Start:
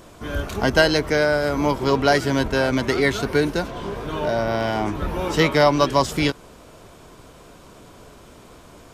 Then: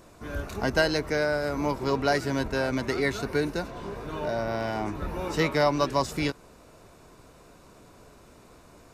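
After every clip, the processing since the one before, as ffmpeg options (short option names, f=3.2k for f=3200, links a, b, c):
-af "bandreject=f=3.2k:w=6.8,volume=-7dB"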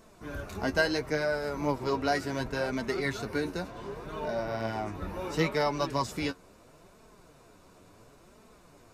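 -af "flanger=delay=4.5:depth=6.6:regen=35:speed=0.71:shape=sinusoidal"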